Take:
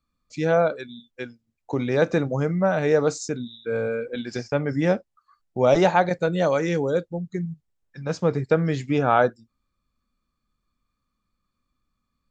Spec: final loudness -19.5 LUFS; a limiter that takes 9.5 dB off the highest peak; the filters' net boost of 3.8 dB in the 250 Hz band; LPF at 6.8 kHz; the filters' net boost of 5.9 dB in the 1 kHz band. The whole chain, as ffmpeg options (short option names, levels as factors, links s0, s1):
-af "lowpass=6800,equalizer=f=250:t=o:g=5,equalizer=f=1000:t=o:g=8,volume=1.41,alimiter=limit=0.473:level=0:latency=1"